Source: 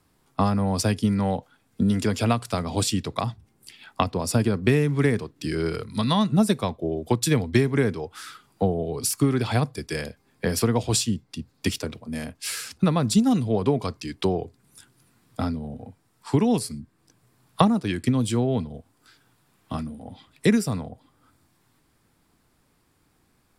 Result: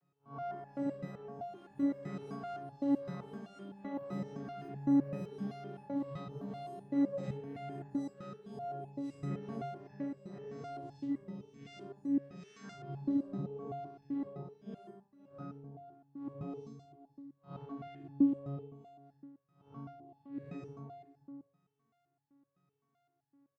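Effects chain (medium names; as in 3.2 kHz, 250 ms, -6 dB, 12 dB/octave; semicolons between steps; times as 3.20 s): spectral blur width 175 ms; low-pass 2.3 kHz 6 dB/octave; in parallel at 0 dB: compression, threshold -34 dBFS, peak gain reduction 14.5 dB; on the sum: saturation -18.5 dBFS, distortion -16 dB; vocoder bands 16, saw 140 Hz; ever faster or slower copies 254 ms, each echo +6 st, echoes 3, each echo -6 dB; on a send: delay 526 ms -15 dB; on the sum: resonator arpeggio 7.8 Hz 180–870 Hz; trim +6 dB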